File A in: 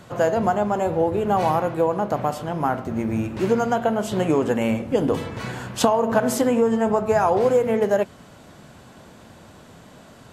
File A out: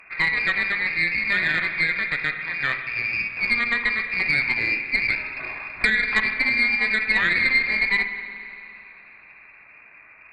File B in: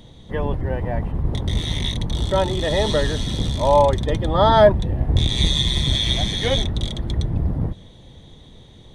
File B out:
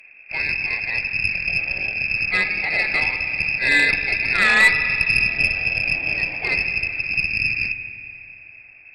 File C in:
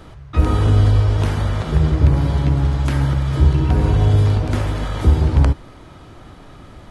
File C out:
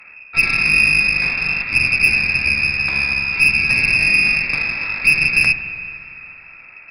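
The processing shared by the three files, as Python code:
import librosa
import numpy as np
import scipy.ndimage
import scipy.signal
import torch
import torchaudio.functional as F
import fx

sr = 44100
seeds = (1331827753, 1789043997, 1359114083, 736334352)

y = fx.freq_invert(x, sr, carrier_hz=2600)
y = fx.cheby_harmonics(y, sr, harmonics=(4, 8), levels_db=(-25, -24), full_scale_db=1.5)
y = fx.rev_spring(y, sr, rt60_s=2.7, pass_ms=(47, 51), chirp_ms=35, drr_db=8.0)
y = F.gain(torch.from_numpy(y), -3.0).numpy()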